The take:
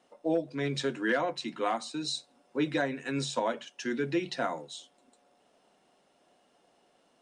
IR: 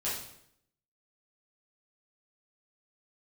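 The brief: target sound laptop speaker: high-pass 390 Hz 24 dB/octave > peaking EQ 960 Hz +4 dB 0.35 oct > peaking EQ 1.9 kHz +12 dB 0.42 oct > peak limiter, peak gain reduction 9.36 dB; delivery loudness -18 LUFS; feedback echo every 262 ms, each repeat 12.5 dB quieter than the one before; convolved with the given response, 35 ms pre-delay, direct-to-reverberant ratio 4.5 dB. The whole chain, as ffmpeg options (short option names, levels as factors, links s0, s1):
-filter_complex "[0:a]aecho=1:1:262|524|786:0.237|0.0569|0.0137,asplit=2[s0][s1];[1:a]atrim=start_sample=2205,adelay=35[s2];[s1][s2]afir=irnorm=-1:irlink=0,volume=0.335[s3];[s0][s3]amix=inputs=2:normalize=0,highpass=f=390:w=0.5412,highpass=f=390:w=1.3066,equalizer=f=960:t=o:w=0.35:g=4,equalizer=f=1900:t=o:w=0.42:g=12,volume=5.01,alimiter=limit=0.447:level=0:latency=1"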